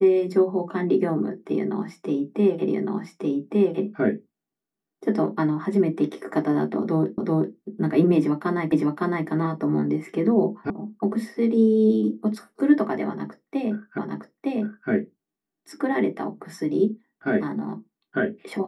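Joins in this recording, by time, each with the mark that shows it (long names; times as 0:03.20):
0:02.68: the same again, the last 1.16 s
0:07.18: the same again, the last 0.38 s
0:08.72: the same again, the last 0.56 s
0:10.70: cut off before it has died away
0:13.98: the same again, the last 0.91 s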